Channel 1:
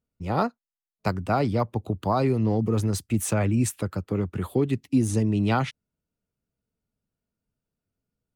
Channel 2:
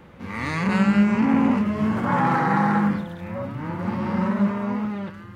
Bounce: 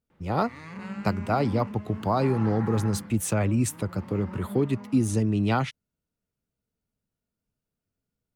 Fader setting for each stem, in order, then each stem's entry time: −1.0, −17.0 decibels; 0.00, 0.10 seconds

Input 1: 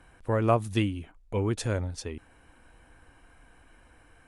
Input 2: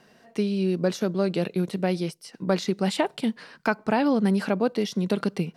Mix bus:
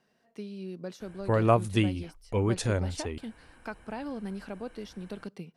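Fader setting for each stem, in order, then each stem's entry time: +1.0, −15.0 decibels; 1.00, 0.00 seconds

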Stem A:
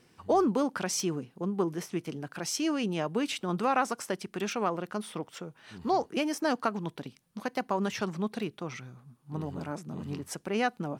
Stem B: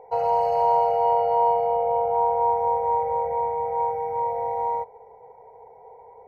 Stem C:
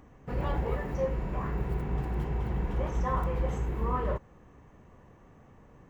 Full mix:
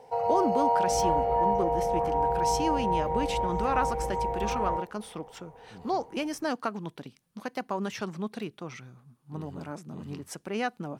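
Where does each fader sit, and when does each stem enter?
−2.0, −5.0, −7.0 decibels; 0.00, 0.00, 0.60 seconds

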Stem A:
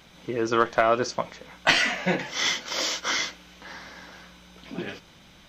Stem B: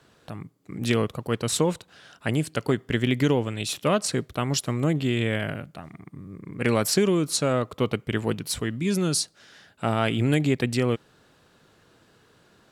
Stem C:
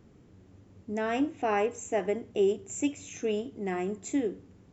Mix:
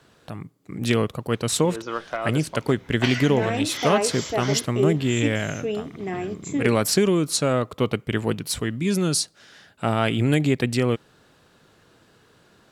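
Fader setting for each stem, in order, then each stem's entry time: −8.0, +2.0, +2.5 decibels; 1.35, 0.00, 2.40 seconds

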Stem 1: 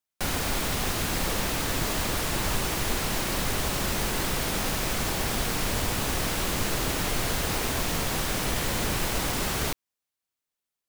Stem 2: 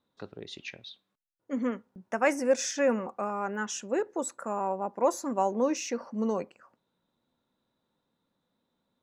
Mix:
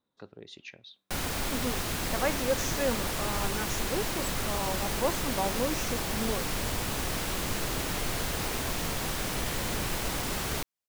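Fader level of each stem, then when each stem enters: −4.0, −4.5 decibels; 0.90, 0.00 seconds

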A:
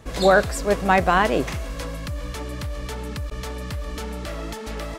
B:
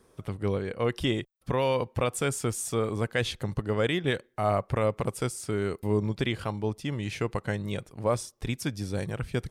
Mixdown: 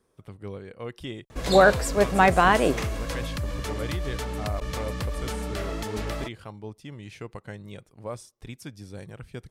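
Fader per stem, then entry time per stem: −0.5, −9.0 decibels; 1.30, 0.00 seconds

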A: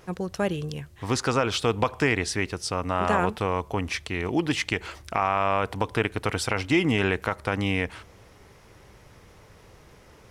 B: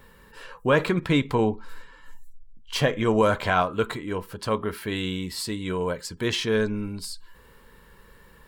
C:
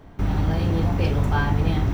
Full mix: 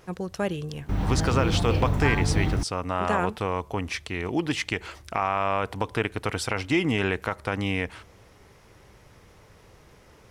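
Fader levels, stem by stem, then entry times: −1.5 dB, muted, −3.5 dB; 0.00 s, muted, 0.70 s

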